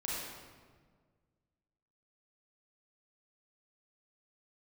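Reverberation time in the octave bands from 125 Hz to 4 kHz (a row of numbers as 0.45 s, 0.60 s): 2.2 s, 2.0 s, 1.8 s, 1.5 s, 1.3 s, 1.0 s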